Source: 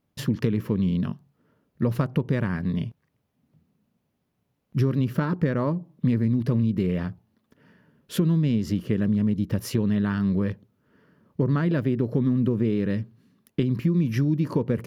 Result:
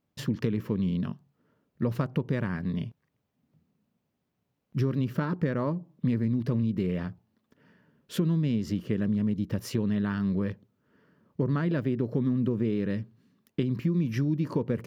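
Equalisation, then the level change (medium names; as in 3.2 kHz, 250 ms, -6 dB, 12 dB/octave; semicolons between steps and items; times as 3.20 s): bass shelf 73 Hz -5.5 dB; peaking EQ 11 kHz -8.5 dB 0.25 oct; -3.5 dB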